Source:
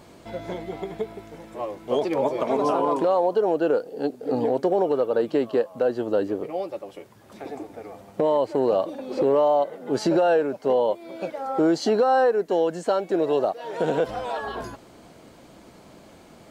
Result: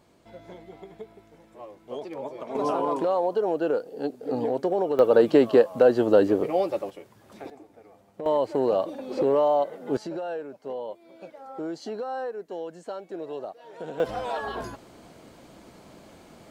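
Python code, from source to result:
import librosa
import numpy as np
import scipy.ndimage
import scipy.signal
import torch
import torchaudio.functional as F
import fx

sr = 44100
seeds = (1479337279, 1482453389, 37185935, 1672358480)

y = fx.gain(x, sr, db=fx.steps((0.0, -12.0), (2.55, -3.5), (4.99, 5.0), (6.9, -3.0), (7.5, -13.0), (8.26, -2.0), (9.97, -13.0), (14.0, -1.0)))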